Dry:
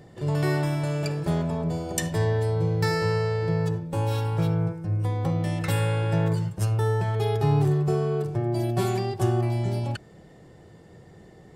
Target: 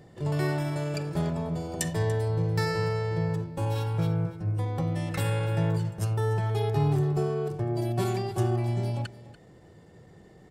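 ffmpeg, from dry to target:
-filter_complex "[0:a]atempo=1.1,asplit=2[a][b];[b]aecho=0:1:289:0.141[c];[a][c]amix=inputs=2:normalize=0,volume=-3dB"

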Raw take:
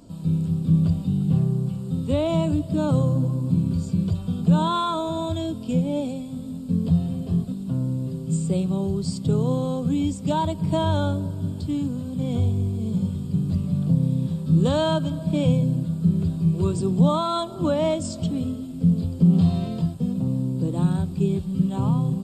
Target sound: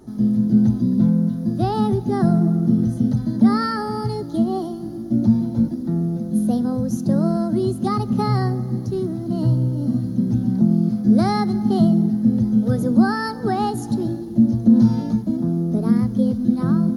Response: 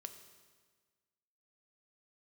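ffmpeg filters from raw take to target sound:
-filter_complex "[0:a]bass=f=250:g=5,treble=f=4k:g=-2,asetrate=57771,aresample=44100,asplit=2[a][b];[1:a]atrim=start_sample=2205,asetrate=25137,aresample=44100[c];[b][c]afir=irnorm=-1:irlink=0,volume=-10dB[d];[a][d]amix=inputs=2:normalize=0,volume=-2.5dB"

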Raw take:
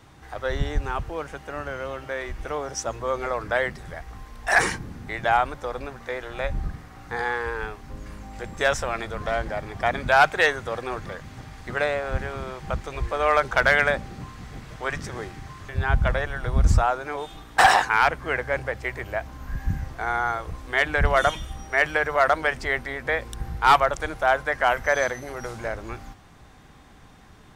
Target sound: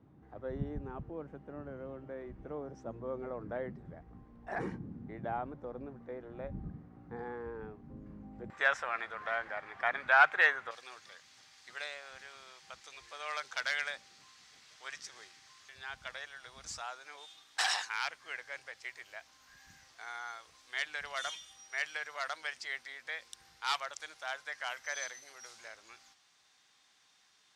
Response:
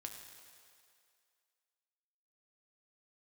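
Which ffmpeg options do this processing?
-af "asetnsamples=n=441:p=0,asendcmd='8.5 bandpass f 1600;10.71 bandpass f 5100',bandpass=f=220:t=q:w=1.3:csg=0,volume=-3.5dB"

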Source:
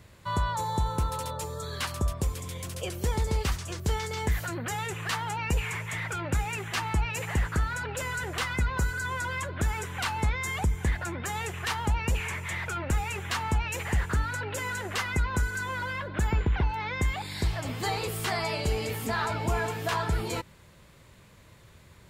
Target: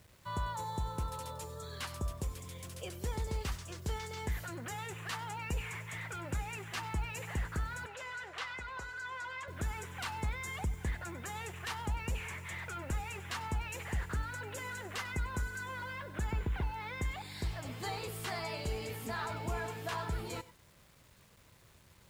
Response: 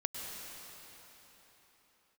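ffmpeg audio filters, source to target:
-filter_complex "[0:a]acrusher=bits=8:mix=0:aa=0.000001,asettb=1/sr,asplit=3[a][b][c];[a]atrim=end=7.864[d];[b]atrim=start=7.86:end=9.48,asetpts=PTS-STARTPTS,afade=t=in:d=0.004:c=qsin,afade=t=out:st=1.616:d=0.004:c=qsin,acrossover=split=460 6100:gain=0.178 1 0.158[e][f][g];[e][f][g]amix=inputs=3:normalize=0[h];[c]atrim=start=9.476[i];[d][h]acrossfade=d=0.004:c1=hsin:c2=qsin[j];[j][i]acrossfade=d=0.004:c1=qsin:c2=hsin[k];[1:a]atrim=start_sample=2205,atrim=end_sample=4410[l];[k][l]afir=irnorm=-1:irlink=0,volume=-8dB"

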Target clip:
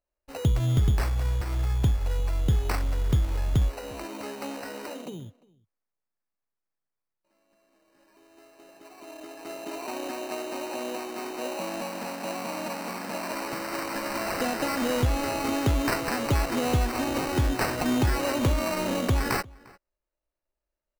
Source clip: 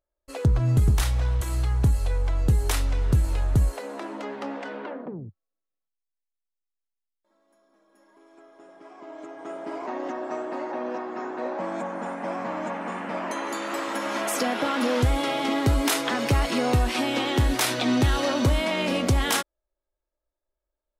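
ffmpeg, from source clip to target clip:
-filter_complex "[0:a]acrusher=samples=13:mix=1:aa=0.000001,asplit=2[a][b];[b]adelay=349.9,volume=-24dB,highshelf=f=4k:g=-7.87[c];[a][c]amix=inputs=2:normalize=0,volume=-2.5dB"

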